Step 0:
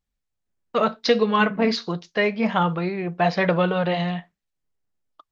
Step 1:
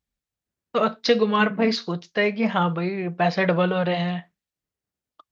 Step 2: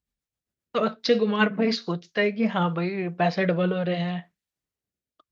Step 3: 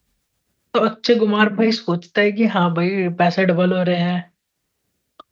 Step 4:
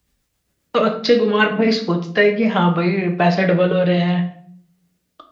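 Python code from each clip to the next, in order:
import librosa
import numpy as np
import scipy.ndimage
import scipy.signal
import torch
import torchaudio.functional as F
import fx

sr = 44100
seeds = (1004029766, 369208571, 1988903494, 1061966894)

y1 = scipy.signal.sosfilt(scipy.signal.butter(2, 49.0, 'highpass', fs=sr, output='sos'), x)
y1 = fx.peak_eq(y1, sr, hz=920.0, db=-2.0, octaves=0.77)
y2 = fx.rotary_switch(y1, sr, hz=7.5, then_hz=0.65, switch_at_s=1.52)
y3 = fx.band_squash(y2, sr, depth_pct=40)
y3 = y3 * 10.0 ** (7.0 / 20.0)
y4 = fx.room_shoebox(y3, sr, seeds[0], volume_m3=75.0, walls='mixed', distance_m=0.46)
y4 = y4 * 10.0 ** (-1.0 / 20.0)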